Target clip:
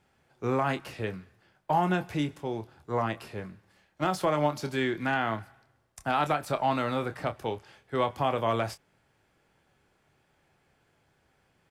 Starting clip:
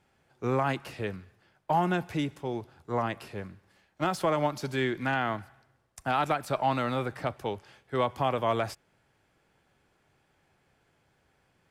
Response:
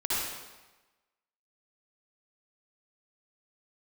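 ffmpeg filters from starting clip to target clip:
-filter_complex "[0:a]asplit=2[s0][s1];[s1]adelay=27,volume=0.316[s2];[s0][s2]amix=inputs=2:normalize=0"

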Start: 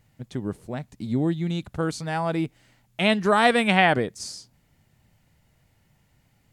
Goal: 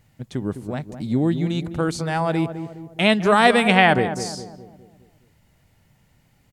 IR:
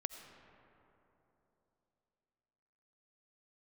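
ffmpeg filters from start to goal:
-filter_complex "[0:a]asplit=2[s0][s1];[s1]adelay=207,lowpass=f=900:p=1,volume=0.355,asplit=2[s2][s3];[s3]adelay=207,lowpass=f=900:p=1,volume=0.51,asplit=2[s4][s5];[s5]adelay=207,lowpass=f=900:p=1,volume=0.51,asplit=2[s6][s7];[s7]adelay=207,lowpass=f=900:p=1,volume=0.51,asplit=2[s8][s9];[s9]adelay=207,lowpass=f=900:p=1,volume=0.51,asplit=2[s10][s11];[s11]adelay=207,lowpass=f=900:p=1,volume=0.51[s12];[s0][s2][s4][s6][s8][s10][s12]amix=inputs=7:normalize=0,volume=1.5"

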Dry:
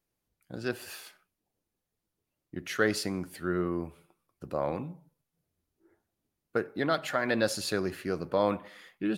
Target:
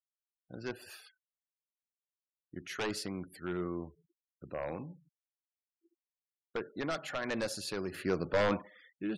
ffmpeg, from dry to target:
-filter_complex "[0:a]aeval=exprs='0.0841*(abs(mod(val(0)/0.0841+3,4)-2)-1)':c=same,asettb=1/sr,asplit=3[s0][s1][s2];[s0]atrim=end=7.944[s3];[s1]atrim=start=7.94:end=8.62,asetpts=PTS-STARTPTS,afade=t=in:d=0.004:c=qsin,afade=t=out:st=0.676:d=0.004:c=qsin,acontrast=71[s4];[s2]atrim=start=8.616[s5];[s3][s4]acrossfade=d=0.004:c1=hsin:c2=qsin[s6];[s6][s5]acrossfade=d=0.004:c1=qsin:c2=hsin,afftfilt=real='re*gte(hypot(re,im),0.00447)':imag='im*gte(hypot(re,im),0.00447)':win_size=1024:overlap=0.75,volume=0.501"

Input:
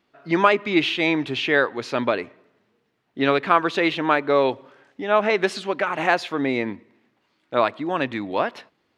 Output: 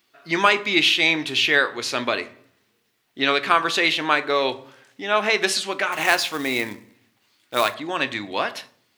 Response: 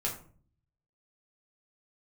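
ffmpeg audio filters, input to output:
-filter_complex "[0:a]crystalizer=i=8.5:c=0,asplit=2[s0][s1];[1:a]atrim=start_sample=2205,asetrate=37044,aresample=44100[s2];[s1][s2]afir=irnorm=-1:irlink=0,volume=0.224[s3];[s0][s3]amix=inputs=2:normalize=0,asettb=1/sr,asplit=3[s4][s5][s6];[s4]atrim=end=5.924[s7];[s5]atrim=start=5.92:end=7.74,asetpts=PTS-STARTPTS,afade=t=in:d=0.004:c=qsin,afade=t=out:st=1.816:d=0.004:c=qsin,acrusher=bits=3:mode=log:mix=0:aa=0.000001[s8];[s6]atrim=start=7.736[s9];[s7][s8]acrossfade=d=0.004:c1=hsin:c2=qsin[s10];[s10][s9]acrossfade=d=0.004:c1=qsin:c2=hsin,volume=0.447"

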